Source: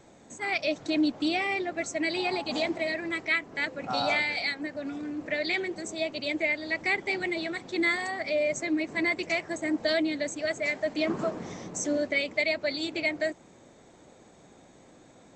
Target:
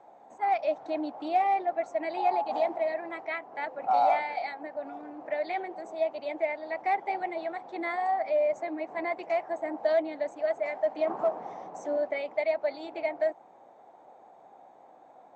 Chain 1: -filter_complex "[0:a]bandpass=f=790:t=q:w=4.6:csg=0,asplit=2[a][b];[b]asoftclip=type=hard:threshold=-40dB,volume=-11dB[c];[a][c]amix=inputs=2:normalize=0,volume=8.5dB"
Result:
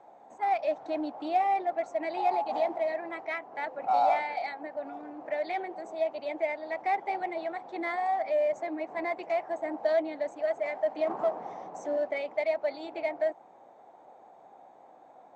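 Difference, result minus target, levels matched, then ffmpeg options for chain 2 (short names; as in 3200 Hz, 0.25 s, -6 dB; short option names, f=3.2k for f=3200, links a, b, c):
hard clip: distortion +11 dB
-filter_complex "[0:a]bandpass=f=790:t=q:w=4.6:csg=0,asplit=2[a][b];[b]asoftclip=type=hard:threshold=-31.5dB,volume=-11dB[c];[a][c]amix=inputs=2:normalize=0,volume=8.5dB"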